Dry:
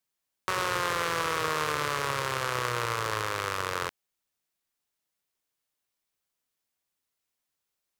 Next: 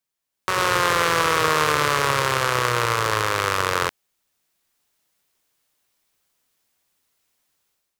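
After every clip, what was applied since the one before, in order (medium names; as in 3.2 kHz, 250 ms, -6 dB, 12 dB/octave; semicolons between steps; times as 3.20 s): level rider gain up to 12.5 dB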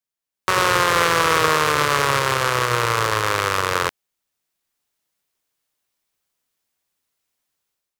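peak limiter -6 dBFS, peak gain reduction 4.5 dB; upward expansion 1.5:1, over -42 dBFS; trim +5 dB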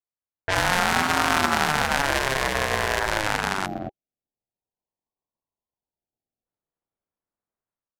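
time-frequency box 3.66–6.45 s, 600–12000 Hz -22 dB; level-controlled noise filter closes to 830 Hz, open at -15.5 dBFS; ring modulator with a swept carrier 400 Hz, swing 45%, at 0.38 Hz; trim -1 dB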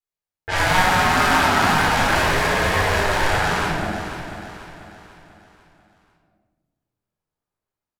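wow and flutter 51 cents; feedback delay 491 ms, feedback 43%, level -10.5 dB; simulated room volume 670 m³, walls mixed, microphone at 4 m; trim -5.5 dB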